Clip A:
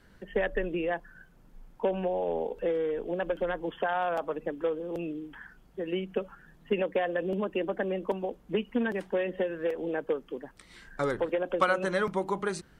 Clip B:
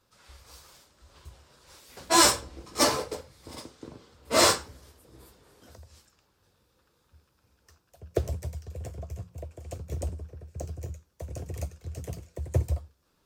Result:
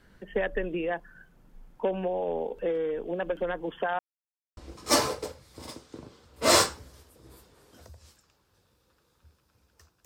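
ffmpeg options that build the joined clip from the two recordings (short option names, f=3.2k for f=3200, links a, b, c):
-filter_complex "[0:a]apad=whole_dur=10.05,atrim=end=10.05,asplit=2[a][b];[a]atrim=end=3.99,asetpts=PTS-STARTPTS,afade=t=out:st=3.986:d=0.004:c=hsin[c];[b]atrim=start=3.99:end=4.57,asetpts=PTS-STARTPTS,volume=0[d];[1:a]atrim=start=2.46:end=7.94,asetpts=PTS-STARTPTS,afade=t=in:d=0.004:c=hsin[e];[c][d][e]concat=n=3:v=0:a=1"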